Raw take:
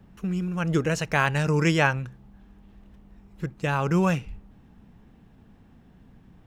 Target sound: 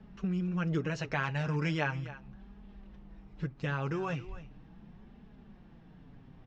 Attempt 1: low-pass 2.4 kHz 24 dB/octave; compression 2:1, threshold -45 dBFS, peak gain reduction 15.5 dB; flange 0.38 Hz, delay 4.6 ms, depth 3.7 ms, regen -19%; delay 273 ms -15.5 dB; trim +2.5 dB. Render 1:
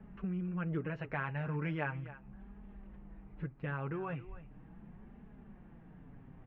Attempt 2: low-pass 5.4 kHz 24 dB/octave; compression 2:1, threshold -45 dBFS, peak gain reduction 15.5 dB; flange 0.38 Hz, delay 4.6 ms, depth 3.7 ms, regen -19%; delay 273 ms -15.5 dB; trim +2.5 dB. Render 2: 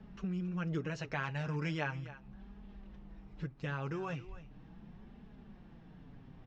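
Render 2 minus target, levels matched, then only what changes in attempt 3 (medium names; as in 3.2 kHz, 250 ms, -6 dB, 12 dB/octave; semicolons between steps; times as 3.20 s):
compression: peak gain reduction +4.5 dB
change: compression 2:1, threshold -35.5 dBFS, peak gain reduction 11 dB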